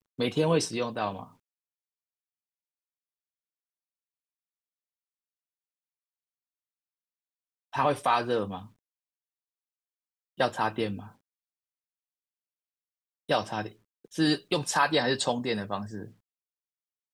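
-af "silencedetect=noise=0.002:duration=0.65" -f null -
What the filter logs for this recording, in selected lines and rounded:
silence_start: 1.35
silence_end: 7.73 | silence_duration: 6.38
silence_start: 8.72
silence_end: 10.38 | silence_duration: 1.65
silence_start: 11.15
silence_end: 13.29 | silence_duration: 2.14
silence_start: 16.13
silence_end: 17.13 | silence_duration: 1.00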